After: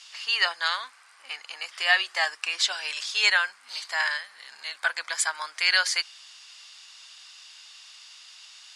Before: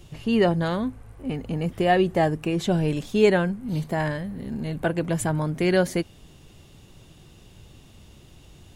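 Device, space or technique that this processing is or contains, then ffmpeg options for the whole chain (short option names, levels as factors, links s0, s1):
headphones lying on a table: -filter_complex "[0:a]highpass=f=1200:w=0.5412,highpass=f=1200:w=1.3066,lowpass=f=9000:w=0.5412,lowpass=f=9000:w=1.3066,equalizer=f=4800:t=o:w=0.42:g=10.5,asettb=1/sr,asplit=3[s0][s1][s2];[s0]atrim=end=4.784[s3];[s1]atrim=start=4.78:end=5.31,asetpts=PTS-STARTPTS,afade=t=in:d=0.004:c=qsin,afade=t=out:st=0.526:d=0.004:c=qsin,bandreject=f=2800:w=6.5[s4];[s2]atrim=start=5.306[s5];[s3][s4]acrossfade=d=0.004:c1=hsin:c2=qsin[s6];[s6][s5]acrossfade=d=0.004:c1=qsin:c2=hsin,volume=2.51"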